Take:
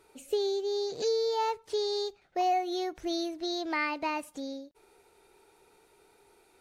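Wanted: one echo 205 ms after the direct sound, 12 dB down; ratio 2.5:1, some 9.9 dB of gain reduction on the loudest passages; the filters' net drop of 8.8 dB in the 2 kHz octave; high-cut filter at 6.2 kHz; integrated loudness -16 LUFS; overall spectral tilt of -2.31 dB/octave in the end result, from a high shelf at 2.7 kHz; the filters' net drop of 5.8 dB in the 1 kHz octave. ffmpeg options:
-af "lowpass=6200,equalizer=f=1000:t=o:g=-7,equalizer=f=2000:t=o:g=-5,highshelf=f=2700:g=-8.5,acompressor=threshold=0.00794:ratio=2.5,aecho=1:1:205:0.251,volume=20"

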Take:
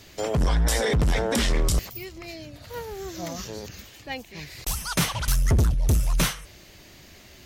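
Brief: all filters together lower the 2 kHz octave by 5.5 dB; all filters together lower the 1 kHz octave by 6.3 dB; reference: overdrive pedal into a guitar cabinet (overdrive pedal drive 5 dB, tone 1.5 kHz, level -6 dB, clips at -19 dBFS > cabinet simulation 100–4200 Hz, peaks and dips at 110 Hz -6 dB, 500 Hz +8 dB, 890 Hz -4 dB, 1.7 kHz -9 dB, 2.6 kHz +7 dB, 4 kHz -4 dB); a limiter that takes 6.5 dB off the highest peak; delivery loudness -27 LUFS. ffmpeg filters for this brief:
-filter_complex "[0:a]equalizer=f=1000:t=o:g=-5,equalizer=f=2000:t=o:g=-5,alimiter=limit=0.112:level=0:latency=1,asplit=2[s0][s1];[s1]highpass=f=720:p=1,volume=1.78,asoftclip=type=tanh:threshold=0.112[s2];[s0][s2]amix=inputs=2:normalize=0,lowpass=f=1500:p=1,volume=0.501,highpass=100,equalizer=f=110:t=q:w=4:g=-6,equalizer=f=500:t=q:w=4:g=8,equalizer=f=890:t=q:w=4:g=-4,equalizer=f=1700:t=q:w=4:g=-9,equalizer=f=2600:t=q:w=4:g=7,equalizer=f=4000:t=q:w=4:g=-4,lowpass=f=4200:w=0.5412,lowpass=f=4200:w=1.3066,volume=2.37"

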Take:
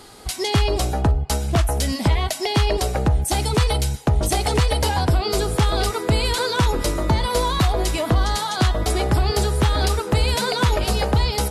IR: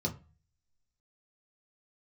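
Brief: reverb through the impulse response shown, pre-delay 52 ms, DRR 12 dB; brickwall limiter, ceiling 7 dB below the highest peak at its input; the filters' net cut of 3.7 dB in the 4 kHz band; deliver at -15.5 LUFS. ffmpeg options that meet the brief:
-filter_complex "[0:a]equalizer=f=4000:t=o:g=-4.5,alimiter=limit=0.141:level=0:latency=1,asplit=2[s0][s1];[1:a]atrim=start_sample=2205,adelay=52[s2];[s1][s2]afir=irnorm=-1:irlink=0,volume=0.158[s3];[s0][s3]amix=inputs=2:normalize=0,volume=2.82"

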